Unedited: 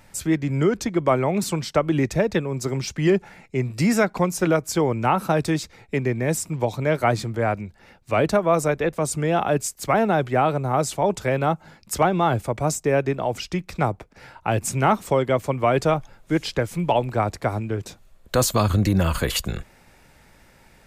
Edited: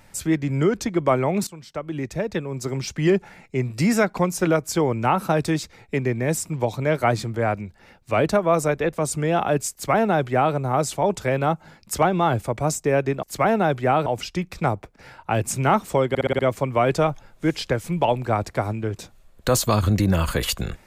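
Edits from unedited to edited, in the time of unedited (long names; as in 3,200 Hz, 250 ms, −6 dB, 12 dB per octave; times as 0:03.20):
0:01.47–0:02.99: fade in, from −18.5 dB
0:09.72–0:10.55: duplicate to 0:13.23
0:15.26: stutter 0.06 s, 6 plays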